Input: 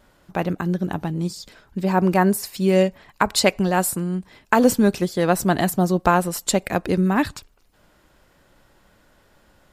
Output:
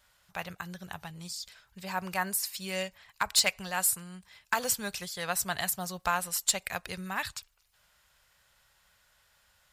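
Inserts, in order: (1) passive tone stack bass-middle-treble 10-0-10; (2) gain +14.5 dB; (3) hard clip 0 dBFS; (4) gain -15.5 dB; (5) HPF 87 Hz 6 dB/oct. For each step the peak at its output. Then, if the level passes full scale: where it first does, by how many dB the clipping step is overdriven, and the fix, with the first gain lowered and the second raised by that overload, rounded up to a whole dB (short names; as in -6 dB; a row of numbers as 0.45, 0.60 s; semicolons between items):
-7.5, +7.0, 0.0, -15.5, -15.0 dBFS; step 2, 7.0 dB; step 2 +7.5 dB, step 4 -8.5 dB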